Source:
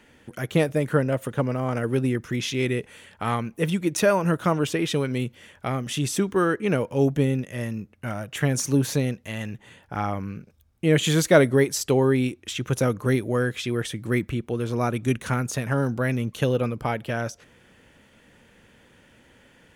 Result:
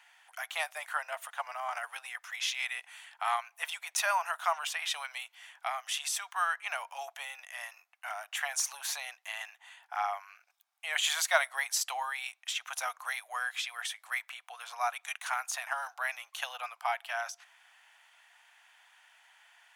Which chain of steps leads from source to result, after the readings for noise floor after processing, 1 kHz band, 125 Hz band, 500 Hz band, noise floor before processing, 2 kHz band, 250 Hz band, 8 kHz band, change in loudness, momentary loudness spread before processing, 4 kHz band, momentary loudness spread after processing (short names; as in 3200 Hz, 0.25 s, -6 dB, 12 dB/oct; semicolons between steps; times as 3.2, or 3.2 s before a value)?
-71 dBFS, -2.5 dB, under -40 dB, -19.5 dB, -57 dBFS, -2.5 dB, under -40 dB, -2.5 dB, -9.5 dB, 12 LU, -2.0 dB, 12 LU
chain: Chebyshev high-pass 700 Hz, order 6; gain -2 dB